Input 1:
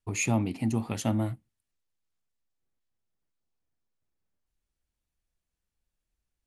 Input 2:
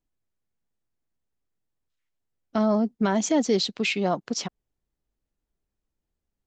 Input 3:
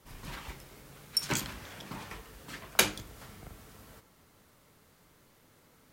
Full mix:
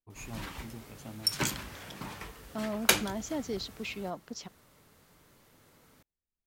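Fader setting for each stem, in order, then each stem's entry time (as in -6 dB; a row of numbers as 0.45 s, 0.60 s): -18.0 dB, -13.0 dB, +1.0 dB; 0.00 s, 0.00 s, 0.10 s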